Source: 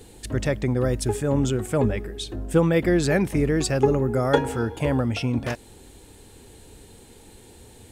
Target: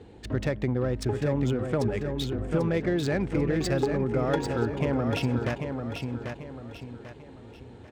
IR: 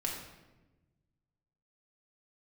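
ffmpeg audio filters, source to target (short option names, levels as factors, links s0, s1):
-filter_complex "[0:a]highpass=56,acompressor=threshold=0.0708:ratio=6,lowpass=9500,adynamicsmooth=sensitivity=5:basefreq=2300,asplit=2[s0][s1];[s1]aecho=0:1:792|1584|2376|3168:0.501|0.185|0.0686|0.0254[s2];[s0][s2]amix=inputs=2:normalize=0"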